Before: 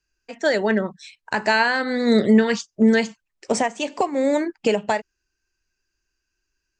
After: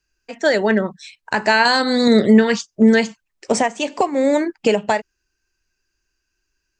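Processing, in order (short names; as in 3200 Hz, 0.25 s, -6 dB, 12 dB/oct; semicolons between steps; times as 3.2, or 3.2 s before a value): 1.65–2.08 graphic EQ 125/1000/2000/4000/8000 Hz +12/+6/-7/+8/+11 dB; gain +3.5 dB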